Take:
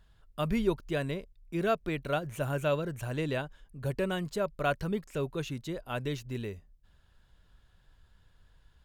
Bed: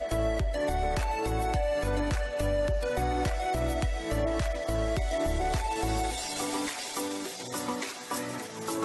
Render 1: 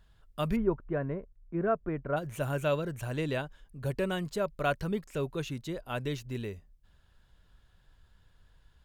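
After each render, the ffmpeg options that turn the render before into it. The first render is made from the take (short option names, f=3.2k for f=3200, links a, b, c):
-filter_complex "[0:a]asplit=3[a][b][c];[a]afade=t=out:st=0.55:d=0.02[d];[b]lowpass=f=1.6k:w=0.5412,lowpass=f=1.6k:w=1.3066,afade=t=in:st=0.55:d=0.02,afade=t=out:st=2.16:d=0.02[e];[c]afade=t=in:st=2.16:d=0.02[f];[d][e][f]amix=inputs=3:normalize=0"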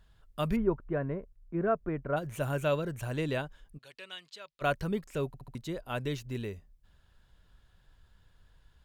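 -filter_complex "[0:a]asplit=3[a][b][c];[a]afade=t=out:st=3.77:d=0.02[d];[b]bandpass=f=3.5k:t=q:w=1.6,afade=t=in:st=3.77:d=0.02,afade=t=out:st=4.61:d=0.02[e];[c]afade=t=in:st=4.61:d=0.02[f];[d][e][f]amix=inputs=3:normalize=0,asplit=5[g][h][i][j][k];[g]atrim=end=5.342[l];[h]atrim=start=5.268:end=5.342[m];[i]atrim=start=5.268:end=5.342[n];[j]atrim=start=5.268:end=5.342[o];[k]atrim=start=5.548[p];[l][m]acrossfade=d=0.004:c1=hsin:c2=hsin[q];[q][n]acrossfade=d=0.004:c1=hsin:c2=hsin[r];[r][o]acrossfade=d=0.004:c1=hsin:c2=hsin[s];[s][p]acrossfade=d=0.004:c1=hsin:c2=hsin"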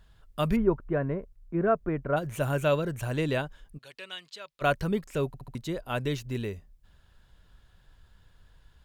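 -af "volume=4dB"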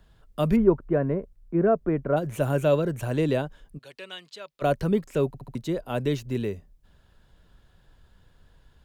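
-filter_complex "[0:a]acrossover=split=150|730|3600[a][b][c][d];[b]acontrast=49[e];[c]alimiter=level_in=3.5dB:limit=-24dB:level=0:latency=1,volume=-3.5dB[f];[a][e][f][d]amix=inputs=4:normalize=0"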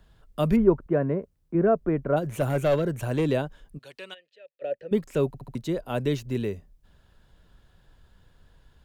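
-filter_complex "[0:a]asettb=1/sr,asplit=3[a][b][c];[a]atrim=end=0.864[d];[b]atrim=start=0.86:end=1.55,asetpts=PTS-STARTPTS,afade=t=in:d=0.004:c=qsin,afade=t=out:st=0.686:d=0.004:c=qsin,highpass=84[e];[c]atrim=start=1.546[f];[d][e]acrossfade=d=0.004:c1=hsin:c2=qsin[g];[g][f]acrossfade=d=0.004:c1=qsin:c2=hsin,asettb=1/sr,asplit=3[h][i][j];[h]atrim=end=2.294[k];[i]atrim=start=2.29:end=3.32,asetpts=PTS-STARTPTS,afade=t=in:d=0.004:c=qsin,afade=t=out:st=1.026:d=0.004:c=qsin,aeval=exprs='clip(val(0),-1,0.112)':c=same[l];[j]atrim=start=3.316[m];[k][l]acrossfade=d=0.004:c1=hsin:c2=qsin[n];[n][m]acrossfade=d=0.004:c1=qsin:c2=hsin,asplit=3[o][p][q];[o]afade=t=out:st=4.13:d=0.02[r];[p]asplit=3[s][t][u];[s]bandpass=f=530:t=q:w=8,volume=0dB[v];[t]bandpass=f=1.84k:t=q:w=8,volume=-6dB[w];[u]bandpass=f=2.48k:t=q:w=8,volume=-9dB[x];[v][w][x]amix=inputs=3:normalize=0,afade=t=in:st=4.13:d=0.02,afade=t=out:st=4.91:d=0.02[y];[q]afade=t=in:st=4.91:d=0.02[z];[r][y][z]amix=inputs=3:normalize=0"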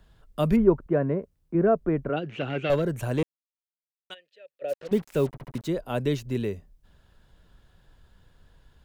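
-filter_complex "[0:a]asettb=1/sr,asplit=3[a][b][c];[a]atrim=end=2.094[d];[b]atrim=start=2.09:end=2.7,asetpts=PTS-STARTPTS,afade=t=in:d=0.004:c=qsin,afade=t=out:st=0.606:d=0.004:c=qsin,highpass=190,equalizer=f=600:t=q:w=4:g=-8,equalizer=f=1k:t=q:w=4:g=-9,equalizer=f=2.8k:t=q:w=4:g=10,lowpass=f=4.2k:w=0.5412,lowpass=f=4.2k:w=1.3066[e];[c]atrim=start=2.696[f];[d][e]acrossfade=d=0.004:c1=hsin:c2=qsin[g];[g][f]acrossfade=d=0.004:c1=qsin:c2=hsin,asplit=3[h][i][j];[h]afade=t=out:st=4.68:d=0.02[k];[i]acrusher=bits=6:mix=0:aa=0.5,afade=t=in:st=4.68:d=0.02,afade=t=out:st=5.67:d=0.02[l];[j]afade=t=in:st=5.67:d=0.02[m];[k][l][m]amix=inputs=3:normalize=0,asplit=3[n][o][p];[n]atrim=end=3.23,asetpts=PTS-STARTPTS,afade=t=out:st=3.226:d=0.004:c=hsin[q];[o]atrim=start=3.23:end=4.1,asetpts=PTS-STARTPTS,volume=0[r];[p]atrim=start=4.1,asetpts=PTS-STARTPTS,afade=t=in:d=0.004:c=hsin[s];[q][r][s]concat=n=3:v=0:a=1"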